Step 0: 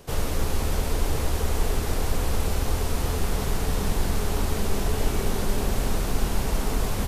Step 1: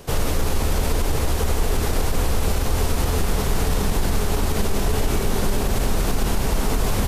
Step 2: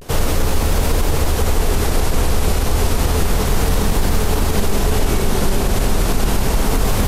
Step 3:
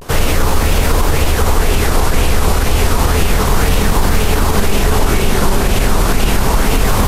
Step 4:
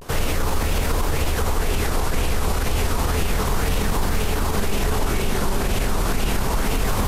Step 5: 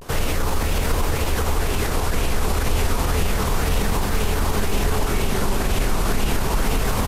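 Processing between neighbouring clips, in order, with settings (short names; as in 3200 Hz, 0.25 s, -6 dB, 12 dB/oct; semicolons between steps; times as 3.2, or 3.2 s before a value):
limiter -17.5 dBFS, peak gain reduction 7 dB; gain +6.5 dB
vibrato 0.31 Hz 51 cents; gain +4.5 dB
LFO bell 2 Hz 980–2800 Hz +7 dB; gain +3.5 dB
limiter -5.5 dBFS, peak gain reduction 3.5 dB; gain -6.5 dB
echo 0.757 s -9.5 dB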